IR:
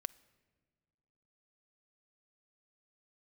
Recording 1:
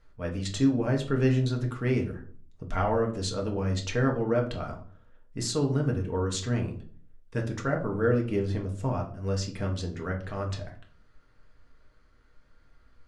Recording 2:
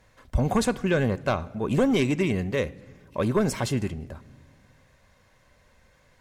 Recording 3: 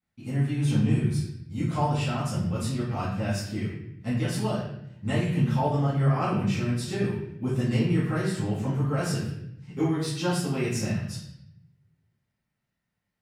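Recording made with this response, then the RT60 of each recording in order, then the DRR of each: 2; 0.45 s, 1.6 s, 0.75 s; 0.5 dB, 13.5 dB, -11.5 dB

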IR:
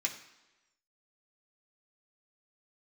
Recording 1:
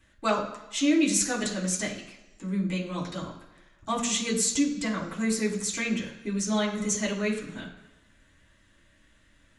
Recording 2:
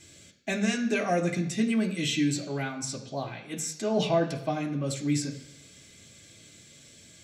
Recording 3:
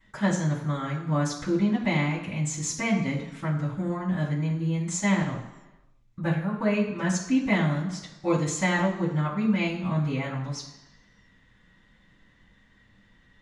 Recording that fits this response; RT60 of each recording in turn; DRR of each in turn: 2; 1.1 s, 1.1 s, 1.1 s; -7.0 dB, 0.0 dB, -16.0 dB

